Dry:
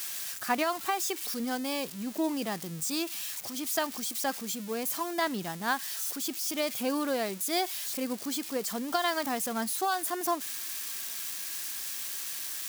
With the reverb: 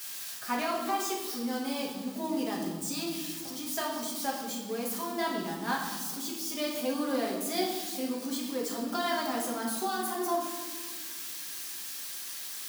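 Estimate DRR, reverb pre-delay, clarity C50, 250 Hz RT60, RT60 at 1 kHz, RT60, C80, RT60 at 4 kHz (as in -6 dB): -3.5 dB, 5 ms, 3.0 dB, 2.3 s, 1.4 s, 1.5 s, 6.0 dB, 1.1 s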